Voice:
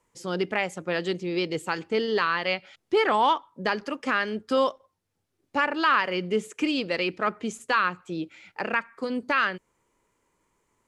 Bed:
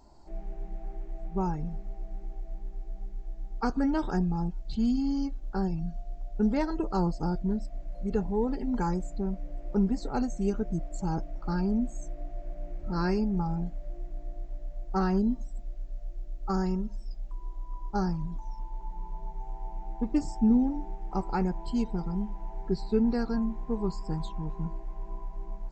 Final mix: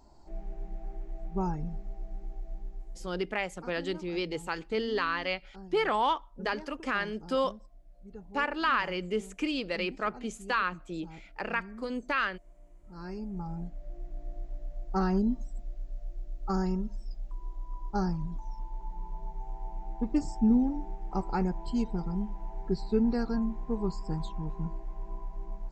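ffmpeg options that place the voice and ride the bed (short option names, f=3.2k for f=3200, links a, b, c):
-filter_complex "[0:a]adelay=2800,volume=-5.5dB[a];[1:a]volume=15.5dB,afade=t=out:st=2.61:d=0.67:silence=0.149624,afade=t=in:st=12.9:d=1.45:silence=0.141254[b];[a][b]amix=inputs=2:normalize=0"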